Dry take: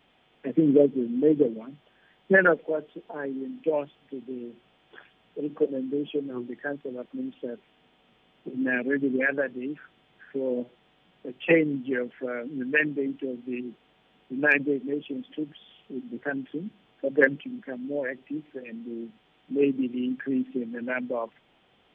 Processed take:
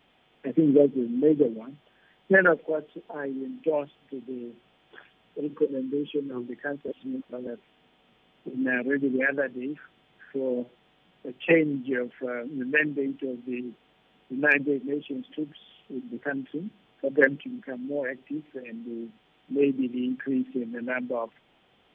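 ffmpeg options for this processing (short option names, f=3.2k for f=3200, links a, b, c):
-filter_complex "[0:a]asettb=1/sr,asplit=3[a][b][c];[a]atrim=end=5.534[d];[b]atrim=start=5.53:end=6.32,asetpts=PTS-STARTPTS,afade=t=in:d=0.004:c=qsin,afade=t=out:st=0.786:d=0.004:c=qsin,asuperstop=centerf=680:order=20:qfactor=2.5[e];[c]atrim=start=6.316[f];[d][e]acrossfade=d=0.004:c1=hsin:c2=qsin[g];[g][f]acrossfade=d=0.004:c1=qsin:c2=hsin,asplit=3[h][i][j];[h]atrim=end=6.882[k];[i]atrim=start=6.878:end=7.472,asetpts=PTS-STARTPTS,areverse[l];[j]atrim=start=7.468[m];[k][l]acrossfade=d=0.004:c1=hsin:c2=hsin[n];[n][m]acrossfade=d=0.004:c1=hsin:c2=hsin"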